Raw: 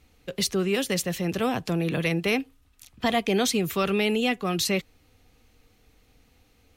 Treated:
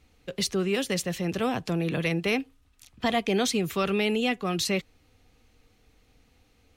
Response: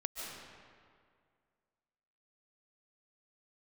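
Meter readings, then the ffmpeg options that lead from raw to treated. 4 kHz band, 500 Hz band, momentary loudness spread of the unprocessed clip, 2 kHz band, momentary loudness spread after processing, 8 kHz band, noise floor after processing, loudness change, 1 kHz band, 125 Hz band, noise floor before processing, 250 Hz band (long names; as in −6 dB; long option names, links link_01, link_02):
−2.0 dB, −1.5 dB, 5 LU, −1.5 dB, 5 LU, −2.5 dB, −64 dBFS, −1.5 dB, −1.5 dB, −1.5 dB, −62 dBFS, −1.5 dB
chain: -af "equalizer=frequency=14000:width=0.89:gain=-6,volume=-1.5dB"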